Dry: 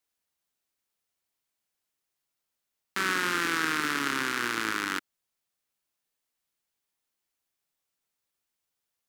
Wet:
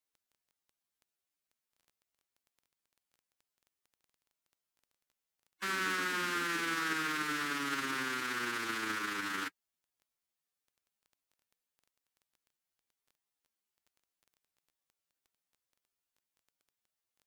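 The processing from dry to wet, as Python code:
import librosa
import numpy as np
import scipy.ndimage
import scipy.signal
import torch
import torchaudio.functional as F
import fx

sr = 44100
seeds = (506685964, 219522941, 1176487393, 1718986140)

y = fx.stretch_vocoder(x, sr, factor=1.9)
y = fx.dmg_crackle(y, sr, seeds[0], per_s=10.0, level_db=-46.0)
y = y * 10.0 ** (-6.0 / 20.0)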